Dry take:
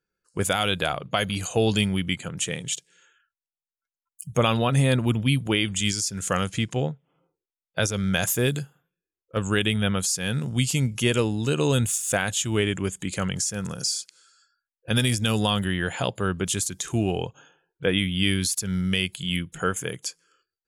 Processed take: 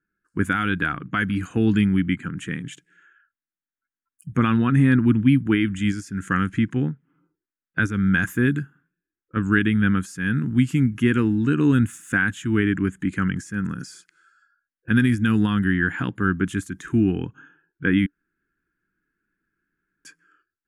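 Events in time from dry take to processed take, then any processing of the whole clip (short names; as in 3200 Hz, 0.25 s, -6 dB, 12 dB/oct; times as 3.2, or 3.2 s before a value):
10.4–11.34 companded quantiser 8-bit
18.06–20.05 room tone
whole clip: EQ curve 140 Hz 0 dB, 290 Hz +9 dB, 590 Hz -20 dB, 1600 Hz +7 dB, 2400 Hz -6 dB, 4400 Hz -20 dB, 9600 Hz -17 dB; gain +2 dB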